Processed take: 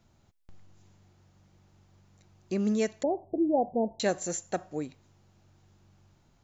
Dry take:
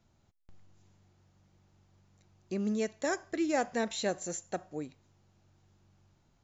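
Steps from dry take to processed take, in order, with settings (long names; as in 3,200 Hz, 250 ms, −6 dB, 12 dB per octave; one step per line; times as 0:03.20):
0:03.03–0:04.00: Butterworth low-pass 870 Hz 72 dB per octave
level +4.5 dB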